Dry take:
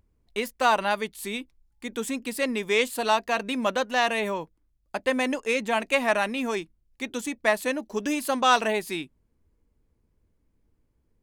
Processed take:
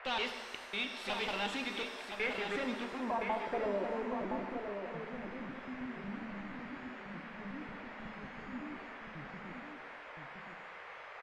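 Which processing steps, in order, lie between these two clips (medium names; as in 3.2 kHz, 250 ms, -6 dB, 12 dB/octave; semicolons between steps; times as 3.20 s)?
slices played last to first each 183 ms, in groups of 4; tilt EQ +1.5 dB/octave; valve stage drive 31 dB, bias 0.3; low-pass sweep 3.3 kHz -> 160 Hz, 1.70–5.15 s; band noise 460–2200 Hz -47 dBFS; on a send: delay 1018 ms -6.5 dB; on the sum: pitch-shifted reverb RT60 1.3 s, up +7 st, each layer -8 dB, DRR 6 dB; trim -4.5 dB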